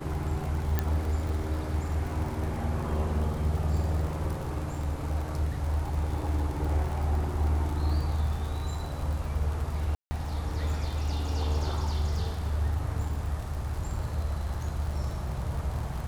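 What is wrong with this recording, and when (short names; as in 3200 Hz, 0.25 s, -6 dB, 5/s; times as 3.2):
crackle 82/s -35 dBFS
0.79 pop -13 dBFS
9.95–10.11 gap 0.16 s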